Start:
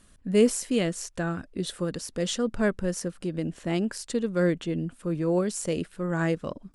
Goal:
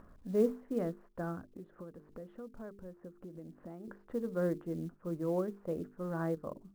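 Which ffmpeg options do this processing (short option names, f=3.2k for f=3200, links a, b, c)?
-filter_complex "[0:a]lowpass=f=1.3k:w=0.5412,lowpass=f=1.3k:w=1.3066,bandreject=f=50:t=h:w=6,bandreject=f=100:t=h:w=6,bandreject=f=150:t=h:w=6,bandreject=f=200:t=h:w=6,bandreject=f=250:t=h:w=6,bandreject=f=300:t=h:w=6,bandreject=f=350:t=h:w=6,bandreject=f=400:t=h:w=6,bandreject=f=450:t=h:w=6,asettb=1/sr,asplit=3[a][b][c];[a]atrim=end=1.544[d];[b]atrim=start=1.54:end=3.88,asetpts=PTS-STARTPTS,afade=t=in:d=0.004:c=qsin,afade=t=out:st=2.336:d=0.004:c=qsin,acompressor=threshold=-40dB:ratio=3[e];[c]atrim=start=3.876[f];[d][e]acrossfade=d=0.004:c1=hsin:c2=qsin[g];[g][f]acrossfade=d=0.004:c1=qsin:c2=hsin,acrusher=bits=8:mode=log:mix=0:aa=0.000001,acompressor=mode=upward:threshold=-36dB:ratio=2.5,lowshelf=f=250:g=-4.5,volume=-6.5dB"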